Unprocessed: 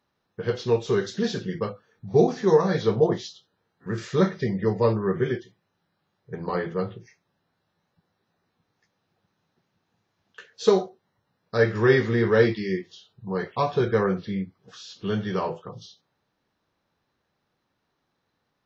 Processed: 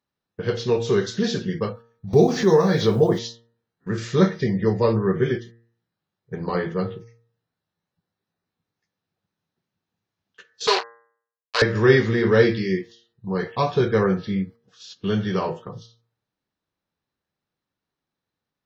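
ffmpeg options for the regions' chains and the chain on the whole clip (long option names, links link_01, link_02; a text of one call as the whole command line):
ffmpeg -i in.wav -filter_complex "[0:a]asettb=1/sr,asplit=3[link_01][link_02][link_03];[link_01]atrim=end=2.134[link_04];[link_02]atrim=start=2.13:end=3.19,asetpts=PTS-STARTPTS,afade=type=in:duration=0.004:curve=qsin,afade=type=out:start_time=1.056:duration=0.004:curve=qsin,acompressor=mode=upward:threshold=-18dB:ratio=2.5:attack=3.2:release=140:knee=2.83:detection=peak,acrusher=bits=8:mix=0:aa=0.5[link_05];[link_03]atrim=start=3.186[link_06];[link_04][link_05]acrossfade=duration=0.004:curve1=hsin:curve2=qsin[link_07];[link_07][link_06]acrossfade=duration=0.004:curve1=qsin:curve2=hsin,asettb=1/sr,asplit=3[link_08][link_09][link_10];[link_08]atrim=end=10.674[link_11];[link_09]atrim=start=10.67:end=11.62,asetpts=PTS-STARTPTS,afade=type=in:duration=0.004:curve=qsin,afade=type=out:start_time=0.946:duration=0.004:curve=qsin,acrusher=bits=3:mix=0:aa=0.5,highpass=frequency=500:width=0.5412,highpass=frequency=500:width=1.3066,equalizer=frequency=560:width_type=q:width=4:gain=-6,equalizer=frequency=1000:width_type=q:width=4:gain=9,equalizer=frequency=1600:width_type=q:width=4:gain=4,equalizer=frequency=2700:width_type=q:width=4:gain=6,equalizer=frequency=4400:width_type=q:width=4:gain=10,lowpass=frequency=6200:width=0.5412,lowpass=frequency=6200:width=1.3066[link_12];[link_10]atrim=start=11.616[link_13];[link_11][link_12]acrossfade=duration=0.004:curve1=hsin:curve2=qsin[link_14];[link_14][link_13]acrossfade=duration=0.004:curve1=qsin:curve2=hsin,agate=range=-13dB:threshold=-42dB:ratio=16:detection=peak,equalizer=frequency=830:width=0.56:gain=-3.5,bandreject=frequency=116.3:width_type=h:width=4,bandreject=frequency=232.6:width_type=h:width=4,bandreject=frequency=348.9:width_type=h:width=4,bandreject=frequency=465.2:width_type=h:width=4,bandreject=frequency=581.5:width_type=h:width=4,bandreject=frequency=697.8:width_type=h:width=4,bandreject=frequency=814.1:width_type=h:width=4,bandreject=frequency=930.4:width_type=h:width=4,bandreject=frequency=1046.7:width_type=h:width=4,bandreject=frequency=1163:width_type=h:width=4,bandreject=frequency=1279.3:width_type=h:width=4,bandreject=frequency=1395.6:width_type=h:width=4,bandreject=frequency=1511.9:width_type=h:width=4,bandreject=frequency=1628.2:width_type=h:width=4,bandreject=frequency=1744.5:width_type=h:width=4,bandreject=frequency=1860.8:width_type=h:width=4,bandreject=frequency=1977.1:width_type=h:width=4,volume=5dB" out.wav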